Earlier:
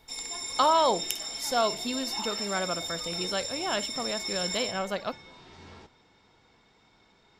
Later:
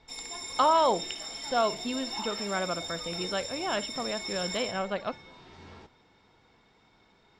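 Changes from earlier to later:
speech: add LPF 3700 Hz 24 dB/oct; master: add high shelf 5500 Hz -7 dB

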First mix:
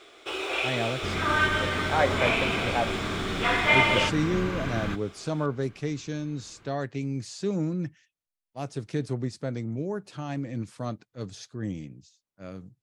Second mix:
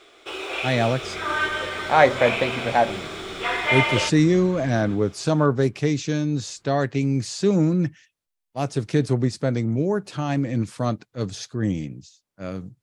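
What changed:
speech +9.0 dB; second sound -10.5 dB

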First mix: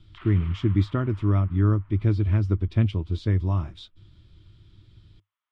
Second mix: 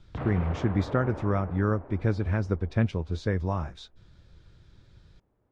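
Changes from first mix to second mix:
background: remove HPF 1200 Hz 24 dB/oct; master: add thirty-one-band EQ 100 Hz -9 dB, 315 Hz -7 dB, 500 Hz +11 dB, 800 Hz +8 dB, 1600 Hz +8 dB, 3150 Hz -8 dB, 6300 Hz +8 dB

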